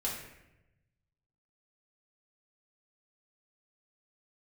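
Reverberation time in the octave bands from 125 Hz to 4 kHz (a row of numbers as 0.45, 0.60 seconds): 1.7, 1.1, 1.0, 0.80, 0.90, 0.65 seconds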